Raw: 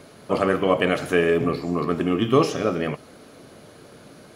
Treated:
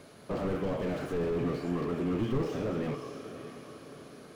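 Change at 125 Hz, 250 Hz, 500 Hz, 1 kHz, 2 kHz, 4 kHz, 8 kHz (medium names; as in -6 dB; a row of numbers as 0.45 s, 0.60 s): -6.0 dB, -8.5 dB, -11.0 dB, -14.0 dB, -16.5 dB, -15.5 dB, under -10 dB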